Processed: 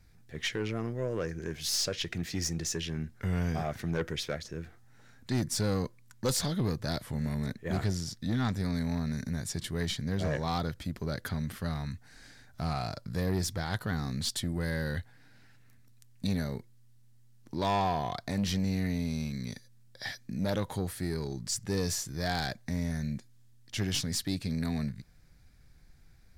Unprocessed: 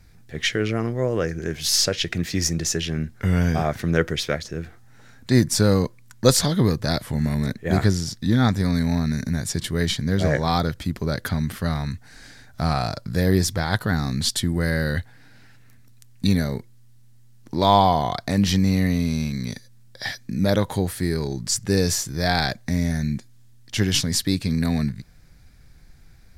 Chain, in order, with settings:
soft clipping −14.5 dBFS, distortion −14 dB
level −8.5 dB

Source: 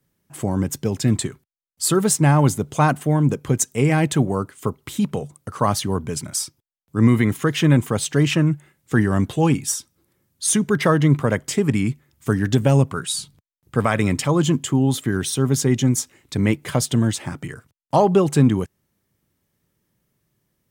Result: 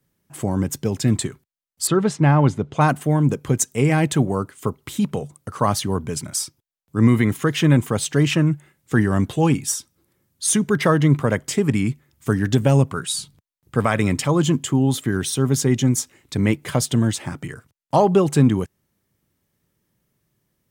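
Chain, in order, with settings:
0:01.87–0:02.81: low-pass filter 3,400 Hz 12 dB per octave

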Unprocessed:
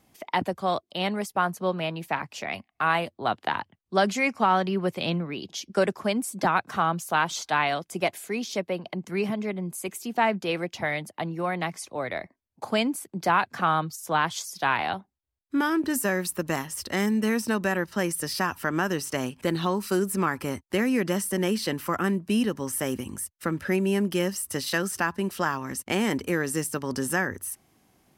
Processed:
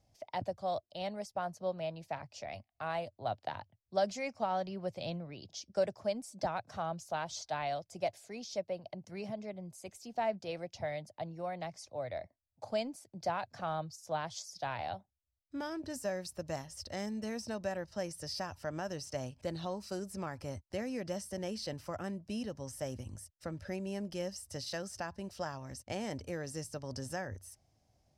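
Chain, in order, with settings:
drawn EQ curve 110 Hz 0 dB, 180 Hz −13 dB, 400 Hz −16 dB, 610 Hz −3 dB, 1,100 Hz −18 dB, 3,200 Hz −15 dB, 5,200 Hz −5 dB, 14,000 Hz −25 dB
level −1 dB

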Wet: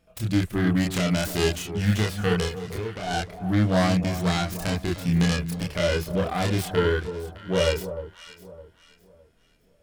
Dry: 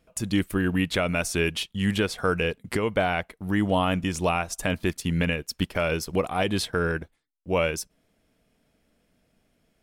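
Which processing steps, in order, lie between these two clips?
phase distortion by the signal itself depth 0.23 ms
0:02.45–0:03.11: downward compressor 4 to 1, threshold −32 dBFS, peak gain reduction 11 dB
multi-voice chorus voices 6, 0.27 Hz, delay 28 ms, depth 1.5 ms
harmonic and percussive parts rebalanced harmonic +9 dB
on a send: delay that swaps between a low-pass and a high-pass 305 ms, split 1,100 Hz, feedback 53%, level −10.5 dB
on the sum: level −2 dB

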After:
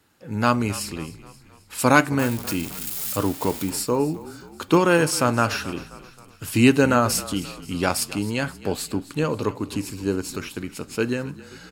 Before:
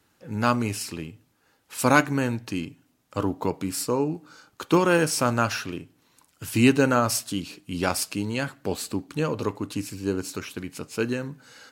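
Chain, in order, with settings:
0:02.19–0:03.70: spike at every zero crossing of −24 dBFS
notch filter 6,000 Hz, Q 15
echo with shifted repeats 265 ms, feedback 51%, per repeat −35 Hz, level −17.5 dB
level +2.5 dB

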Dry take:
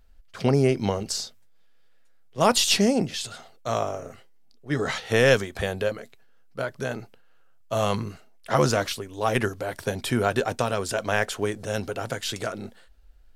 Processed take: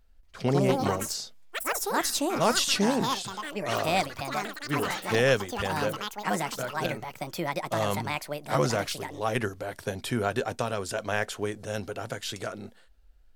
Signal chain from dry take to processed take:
delay with pitch and tempo change per echo 233 ms, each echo +6 semitones, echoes 3
level −4.5 dB

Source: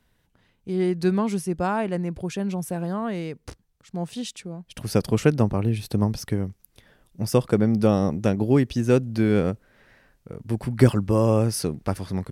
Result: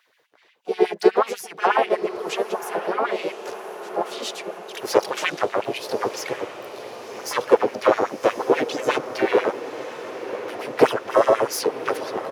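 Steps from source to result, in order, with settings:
one-sided soft clipper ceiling −20.5 dBFS
thirty-one-band graphic EQ 200 Hz −10 dB, 8,000 Hz −9 dB, 12,500 Hz −10 dB
pitch-shifted copies added −3 semitones −16 dB, +3 semitones −2 dB, +12 semitones −18 dB
auto-filter high-pass sine 8.2 Hz 390–2,600 Hz
on a send: feedback delay with all-pass diffusion 1,090 ms, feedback 61%, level −12 dB
on the sum: level +3.5 dB

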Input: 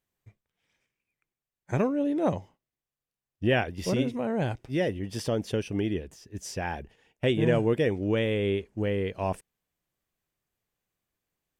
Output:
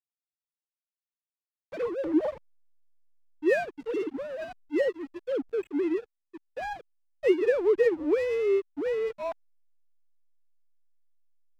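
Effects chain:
three sine waves on the formant tracks
slack as between gear wheels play −34 dBFS

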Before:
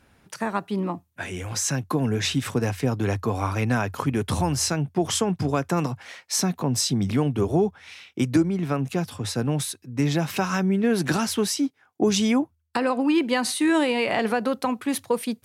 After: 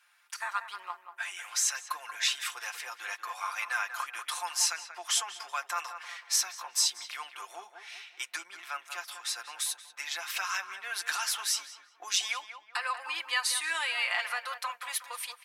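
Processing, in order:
high-pass filter 1,100 Hz 24 dB per octave
comb filter 5.7 ms, depth 66%
tape delay 187 ms, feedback 44%, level −8 dB, low-pass 1,800 Hz
level −3 dB

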